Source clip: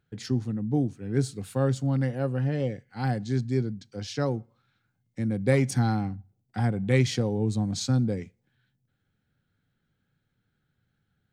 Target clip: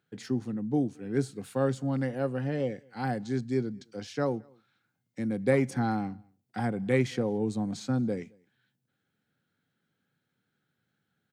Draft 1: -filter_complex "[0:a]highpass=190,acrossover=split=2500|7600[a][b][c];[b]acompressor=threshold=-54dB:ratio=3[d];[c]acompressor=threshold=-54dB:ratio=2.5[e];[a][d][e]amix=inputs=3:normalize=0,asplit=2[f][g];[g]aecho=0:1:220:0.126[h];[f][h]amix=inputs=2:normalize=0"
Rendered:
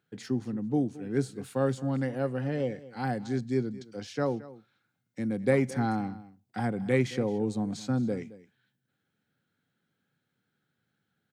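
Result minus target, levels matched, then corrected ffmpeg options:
echo-to-direct +11.5 dB
-filter_complex "[0:a]highpass=190,acrossover=split=2500|7600[a][b][c];[b]acompressor=threshold=-54dB:ratio=3[d];[c]acompressor=threshold=-54dB:ratio=2.5[e];[a][d][e]amix=inputs=3:normalize=0,asplit=2[f][g];[g]aecho=0:1:220:0.0335[h];[f][h]amix=inputs=2:normalize=0"

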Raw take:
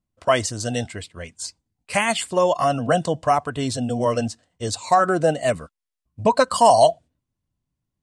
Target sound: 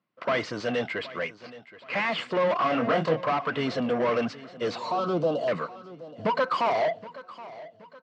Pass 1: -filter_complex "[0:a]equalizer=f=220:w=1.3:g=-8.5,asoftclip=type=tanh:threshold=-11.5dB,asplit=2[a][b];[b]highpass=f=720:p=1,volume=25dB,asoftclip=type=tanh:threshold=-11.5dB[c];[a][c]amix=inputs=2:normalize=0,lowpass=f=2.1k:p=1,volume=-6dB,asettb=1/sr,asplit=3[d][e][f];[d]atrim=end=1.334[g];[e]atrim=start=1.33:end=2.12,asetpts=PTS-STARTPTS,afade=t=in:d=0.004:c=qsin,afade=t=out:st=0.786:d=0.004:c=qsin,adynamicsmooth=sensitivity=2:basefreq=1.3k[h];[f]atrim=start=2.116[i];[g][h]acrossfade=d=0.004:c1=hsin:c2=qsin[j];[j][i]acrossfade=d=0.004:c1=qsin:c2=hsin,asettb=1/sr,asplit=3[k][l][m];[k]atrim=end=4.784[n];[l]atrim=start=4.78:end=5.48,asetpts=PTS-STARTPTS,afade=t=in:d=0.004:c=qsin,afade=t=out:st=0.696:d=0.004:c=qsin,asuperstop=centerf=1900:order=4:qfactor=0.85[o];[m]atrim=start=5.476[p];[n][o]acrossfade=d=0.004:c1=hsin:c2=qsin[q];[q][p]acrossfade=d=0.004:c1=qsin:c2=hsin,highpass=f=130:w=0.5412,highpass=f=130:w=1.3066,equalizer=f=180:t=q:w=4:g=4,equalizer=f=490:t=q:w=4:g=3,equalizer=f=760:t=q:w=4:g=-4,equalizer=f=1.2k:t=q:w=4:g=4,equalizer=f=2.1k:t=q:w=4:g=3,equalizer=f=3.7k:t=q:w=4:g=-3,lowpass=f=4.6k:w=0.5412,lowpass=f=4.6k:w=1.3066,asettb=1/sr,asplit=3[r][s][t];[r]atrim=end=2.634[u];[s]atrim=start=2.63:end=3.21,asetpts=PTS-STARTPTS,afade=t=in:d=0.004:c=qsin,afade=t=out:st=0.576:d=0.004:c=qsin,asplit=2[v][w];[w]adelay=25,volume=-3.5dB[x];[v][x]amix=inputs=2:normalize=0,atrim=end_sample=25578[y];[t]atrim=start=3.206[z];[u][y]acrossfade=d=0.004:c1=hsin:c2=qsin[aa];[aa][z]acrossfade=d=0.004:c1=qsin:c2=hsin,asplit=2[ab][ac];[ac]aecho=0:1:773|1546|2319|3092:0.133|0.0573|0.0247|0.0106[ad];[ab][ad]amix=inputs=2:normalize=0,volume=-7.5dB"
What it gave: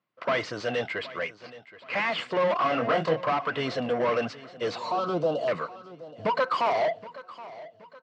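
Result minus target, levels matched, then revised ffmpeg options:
250 Hz band -3.0 dB
-filter_complex "[0:a]equalizer=f=220:w=1.3:g=-2,asoftclip=type=tanh:threshold=-11.5dB,asplit=2[a][b];[b]highpass=f=720:p=1,volume=25dB,asoftclip=type=tanh:threshold=-11.5dB[c];[a][c]amix=inputs=2:normalize=0,lowpass=f=2.1k:p=1,volume=-6dB,asettb=1/sr,asplit=3[d][e][f];[d]atrim=end=1.334[g];[e]atrim=start=1.33:end=2.12,asetpts=PTS-STARTPTS,afade=t=in:d=0.004:c=qsin,afade=t=out:st=0.786:d=0.004:c=qsin,adynamicsmooth=sensitivity=2:basefreq=1.3k[h];[f]atrim=start=2.116[i];[g][h]acrossfade=d=0.004:c1=hsin:c2=qsin[j];[j][i]acrossfade=d=0.004:c1=qsin:c2=hsin,asettb=1/sr,asplit=3[k][l][m];[k]atrim=end=4.784[n];[l]atrim=start=4.78:end=5.48,asetpts=PTS-STARTPTS,afade=t=in:d=0.004:c=qsin,afade=t=out:st=0.696:d=0.004:c=qsin,asuperstop=centerf=1900:order=4:qfactor=0.85[o];[m]atrim=start=5.476[p];[n][o]acrossfade=d=0.004:c1=hsin:c2=qsin[q];[q][p]acrossfade=d=0.004:c1=qsin:c2=hsin,highpass=f=130:w=0.5412,highpass=f=130:w=1.3066,equalizer=f=180:t=q:w=4:g=4,equalizer=f=490:t=q:w=4:g=3,equalizer=f=760:t=q:w=4:g=-4,equalizer=f=1.2k:t=q:w=4:g=4,equalizer=f=2.1k:t=q:w=4:g=3,equalizer=f=3.7k:t=q:w=4:g=-3,lowpass=f=4.6k:w=0.5412,lowpass=f=4.6k:w=1.3066,asettb=1/sr,asplit=3[r][s][t];[r]atrim=end=2.634[u];[s]atrim=start=2.63:end=3.21,asetpts=PTS-STARTPTS,afade=t=in:d=0.004:c=qsin,afade=t=out:st=0.576:d=0.004:c=qsin,asplit=2[v][w];[w]adelay=25,volume=-3.5dB[x];[v][x]amix=inputs=2:normalize=0,atrim=end_sample=25578[y];[t]atrim=start=3.206[z];[u][y]acrossfade=d=0.004:c1=hsin:c2=qsin[aa];[aa][z]acrossfade=d=0.004:c1=qsin:c2=hsin,asplit=2[ab][ac];[ac]aecho=0:1:773|1546|2319|3092:0.133|0.0573|0.0247|0.0106[ad];[ab][ad]amix=inputs=2:normalize=0,volume=-7.5dB"

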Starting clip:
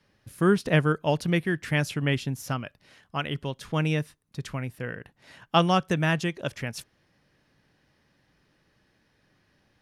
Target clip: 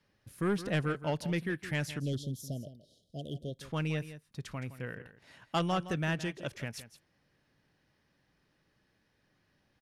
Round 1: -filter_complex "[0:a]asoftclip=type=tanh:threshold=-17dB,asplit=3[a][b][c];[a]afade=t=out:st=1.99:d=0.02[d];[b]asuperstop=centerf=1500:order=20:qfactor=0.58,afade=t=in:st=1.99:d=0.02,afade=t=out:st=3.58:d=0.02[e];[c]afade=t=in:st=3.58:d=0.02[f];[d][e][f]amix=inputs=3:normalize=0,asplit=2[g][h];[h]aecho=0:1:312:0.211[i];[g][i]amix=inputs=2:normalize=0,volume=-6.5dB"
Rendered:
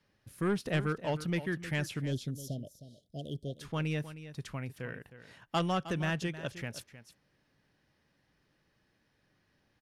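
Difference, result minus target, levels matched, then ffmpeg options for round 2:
echo 0.146 s late
-filter_complex "[0:a]asoftclip=type=tanh:threshold=-17dB,asplit=3[a][b][c];[a]afade=t=out:st=1.99:d=0.02[d];[b]asuperstop=centerf=1500:order=20:qfactor=0.58,afade=t=in:st=1.99:d=0.02,afade=t=out:st=3.58:d=0.02[e];[c]afade=t=in:st=3.58:d=0.02[f];[d][e][f]amix=inputs=3:normalize=0,asplit=2[g][h];[h]aecho=0:1:166:0.211[i];[g][i]amix=inputs=2:normalize=0,volume=-6.5dB"

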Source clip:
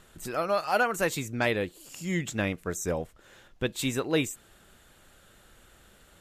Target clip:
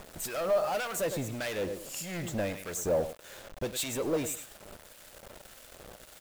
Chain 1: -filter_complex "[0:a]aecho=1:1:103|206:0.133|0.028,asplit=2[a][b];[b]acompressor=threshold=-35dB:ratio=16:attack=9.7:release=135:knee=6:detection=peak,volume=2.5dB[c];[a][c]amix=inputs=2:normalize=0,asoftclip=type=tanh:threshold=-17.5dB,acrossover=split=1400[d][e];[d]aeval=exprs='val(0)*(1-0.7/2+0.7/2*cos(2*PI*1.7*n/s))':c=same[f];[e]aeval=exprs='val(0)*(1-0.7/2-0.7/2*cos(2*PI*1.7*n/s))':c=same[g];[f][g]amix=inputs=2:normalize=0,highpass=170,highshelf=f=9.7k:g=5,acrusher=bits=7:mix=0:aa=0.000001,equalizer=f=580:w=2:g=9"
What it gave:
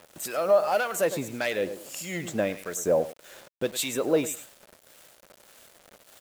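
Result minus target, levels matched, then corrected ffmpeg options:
soft clip: distortion -10 dB; 125 Hz band -5.5 dB
-filter_complex "[0:a]aecho=1:1:103|206:0.133|0.028,asplit=2[a][b];[b]acompressor=threshold=-35dB:ratio=16:attack=9.7:release=135:knee=6:detection=peak,volume=2.5dB[c];[a][c]amix=inputs=2:normalize=0,asoftclip=type=tanh:threshold=-29dB,acrossover=split=1400[d][e];[d]aeval=exprs='val(0)*(1-0.7/2+0.7/2*cos(2*PI*1.7*n/s))':c=same[f];[e]aeval=exprs='val(0)*(1-0.7/2-0.7/2*cos(2*PI*1.7*n/s))':c=same[g];[f][g]amix=inputs=2:normalize=0,highshelf=f=9.7k:g=5,acrusher=bits=7:mix=0:aa=0.000001,equalizer=f=580:w=2:g=9"

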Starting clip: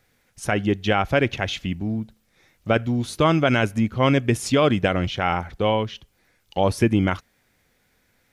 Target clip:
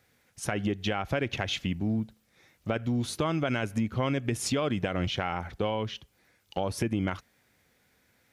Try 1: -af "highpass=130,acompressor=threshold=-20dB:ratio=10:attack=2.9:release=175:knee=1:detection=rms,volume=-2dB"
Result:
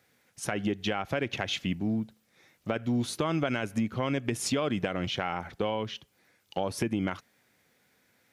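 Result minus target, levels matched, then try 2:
125 Hz band -2.5 dB
-af "highpass=58,acompressor=threshold=-20dB:ratio=10:attack=2.9:release=175:knee=1:detection=rms,volume=-2dB"

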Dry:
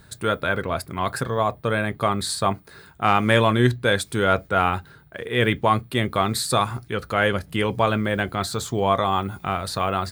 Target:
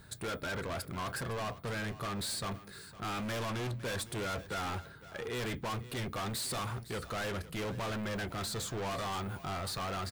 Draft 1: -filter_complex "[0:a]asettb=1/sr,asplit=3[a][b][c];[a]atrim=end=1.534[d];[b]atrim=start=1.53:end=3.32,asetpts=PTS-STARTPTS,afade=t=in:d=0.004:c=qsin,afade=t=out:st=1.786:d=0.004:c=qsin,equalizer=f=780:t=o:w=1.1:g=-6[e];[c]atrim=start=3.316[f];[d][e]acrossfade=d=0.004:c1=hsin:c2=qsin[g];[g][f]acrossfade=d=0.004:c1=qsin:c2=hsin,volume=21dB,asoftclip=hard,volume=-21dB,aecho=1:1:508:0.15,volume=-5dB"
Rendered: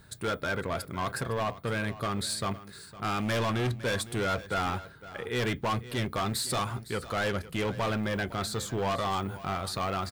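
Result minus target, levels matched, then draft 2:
overloaded stage: distortion -5 dB
-filter_complex "[0:a]asettb=1/sr,asplit=3[a][b][c];[a]atrim=end=1.534[d];[b]atrim=start=1.53:end=3.32,asetpts=PTS-STARTPTS,afade=t=in:d=0.004:c=qsin,afade=t=out:st=1.786:d=0.004:c=qsin,equalizer=f=780:t=o:w=1.1:g=-6[e];[c]atrim=start=3.316[f];[d][e]acrossfade=d=0.004:c1=hsin:c2=qsin[g];[g][f]acrossfade=d=0.004:c1=qsin:c2=hsin,volume=30dB,asoftclip=hard,volume=-30dB,aecho=1:1:508:0.15,volume=-5dB"

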